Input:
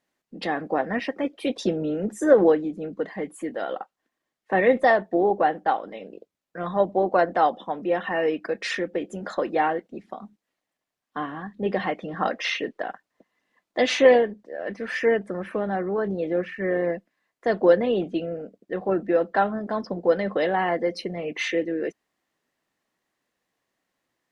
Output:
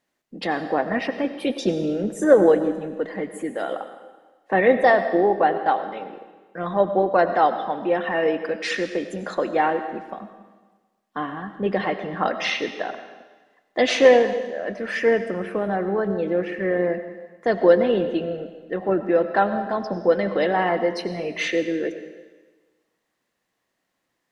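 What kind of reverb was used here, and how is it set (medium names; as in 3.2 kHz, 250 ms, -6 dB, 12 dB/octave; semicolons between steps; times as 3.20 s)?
algorithmic reverb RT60 1.3 s, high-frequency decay 1×, pre-delay 55 ms, DRR 9.5 dB; trim +2 dB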